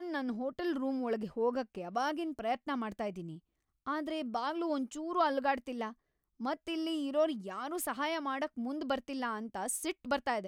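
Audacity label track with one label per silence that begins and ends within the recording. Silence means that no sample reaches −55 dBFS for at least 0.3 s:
3.390000	3.860000	silence
5.930000	6.400000	silence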